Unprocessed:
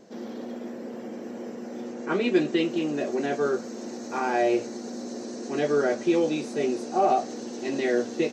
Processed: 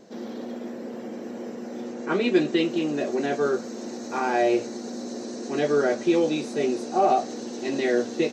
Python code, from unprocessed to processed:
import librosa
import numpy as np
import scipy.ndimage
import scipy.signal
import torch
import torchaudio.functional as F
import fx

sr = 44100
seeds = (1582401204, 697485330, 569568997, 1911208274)

y = fx.peak_eq(x, sr, hz=3900.0, db=3.5, octaves=0.21)
y = F.gain(torch.from_numpy(y), 1.5).numpy()